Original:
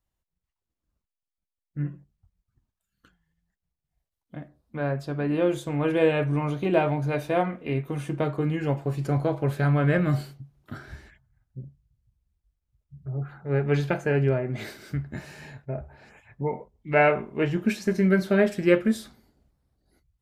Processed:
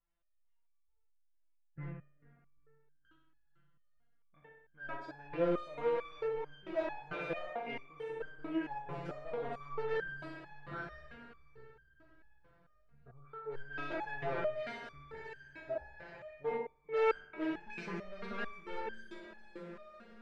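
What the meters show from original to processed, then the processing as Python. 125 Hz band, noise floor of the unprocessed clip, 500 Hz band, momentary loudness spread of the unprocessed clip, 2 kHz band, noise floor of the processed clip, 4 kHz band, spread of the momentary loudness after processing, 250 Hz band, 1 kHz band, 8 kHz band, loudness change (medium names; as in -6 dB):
-24.5 dB, under -85 dBFS, -11.5 dB, 20 LU, -11.5 dB, -71 dBFS, -12.0 dB, 16 LU, -17.5 dB, -10.0 dB, no reading, -14.5 dB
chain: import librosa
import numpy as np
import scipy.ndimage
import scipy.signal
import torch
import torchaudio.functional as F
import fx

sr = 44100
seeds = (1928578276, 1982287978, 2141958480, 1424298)

p1 = fx.spec_trails(x, sr, decay_s=0.36)
p2 = fx.peak_eq(p1, sr, hz=250.0, db=-9.0, octaves=0.95)
p3 = p2 + fx.room_flutter(p2, sr, wall_m=10.8, rt60_s=0.73, dry=0)
p4 = np.clip(10.0 ** (25.0 / 20.0) * p3, -1.0, 1.0) / 10.0 ** (25.0 / 20.0)
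p5 = fx.peak_eq(p4, sr, hz=110.0, db=-14.0, octaves=0.8)
p6 = fx.echo_diffused(p5, sr, ms=469, feedback_pct=49, wet_db=-14.0)
p7 = fx.rider(p6, sr, range_db=5, speed_s=2.0)
p8 = scipy.signal.sosfilt(scipy.signal.butter(2, 2400.0, 'lowpass', fs=sr, output='sos'), p7)
p9 = fx.resonator_held(p8, sr, hz=4.5, low_hz=170.0, high_hz=1600.0)
y = F.gain(torch.from_numpy(p9), 7.5).numpy()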